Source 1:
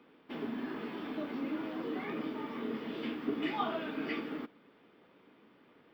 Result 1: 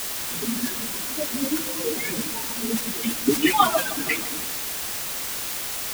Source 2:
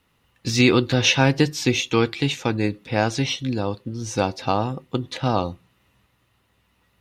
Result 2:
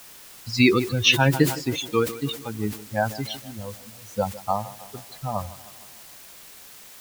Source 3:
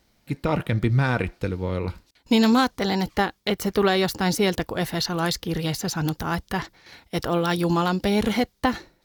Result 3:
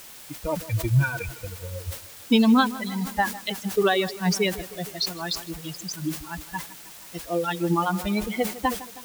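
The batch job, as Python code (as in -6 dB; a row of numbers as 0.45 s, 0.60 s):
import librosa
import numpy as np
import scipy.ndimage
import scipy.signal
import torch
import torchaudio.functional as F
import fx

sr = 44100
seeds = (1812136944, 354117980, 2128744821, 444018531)

y = fx.bin_expand(x, sr, power=3.0)
y = scipy.signal.sosfilt(scipy.signal.butter(2, 4500.0, 'lowpass', fs=sr, output='sos'), y)
y = fx.high_shelf(y, sr, hz=2400.0, db=4.5)
y = fx.quant_dither(y, sr, seeds[0], bits=8, dither='triangular')
y = fx.echo_tape(y, sr, ms=157, feedback_pct=66, wet_db=-16.0, lp_hz=2100.0, drive_db=7.0, wow_cents=24)
y = fx.sustainer(y, sr, db_per_s=140.0)
y = y * 10.0 ** (-26 / 20.0) / np.sqrt(np.mean(np.square(y)))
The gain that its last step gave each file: +18.0 dB, +2.5 dB, +4.0 dB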